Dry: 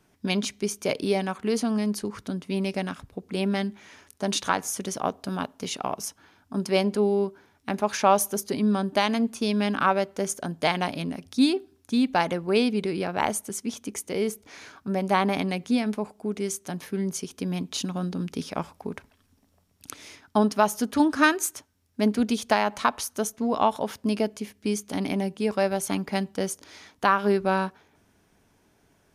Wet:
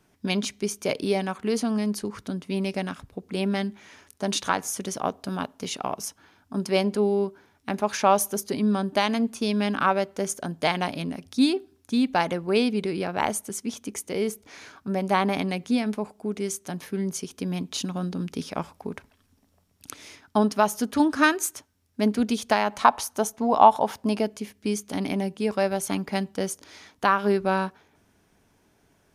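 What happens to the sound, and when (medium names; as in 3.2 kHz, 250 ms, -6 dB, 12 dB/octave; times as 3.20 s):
22.81–24.20 s: peaking EQ 820 Hz +10 dB 0.78 oct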